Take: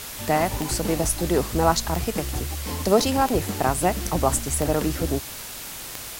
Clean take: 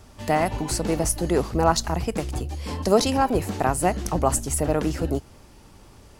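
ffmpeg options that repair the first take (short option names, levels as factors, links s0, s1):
-af "adeclick=t=4,afwtdn=0.018"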